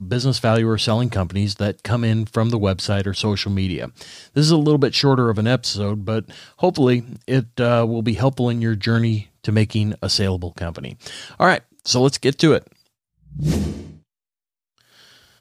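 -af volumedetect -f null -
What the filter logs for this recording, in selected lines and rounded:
mean_volume: -20.0 dB
max_volume: -2.8 dB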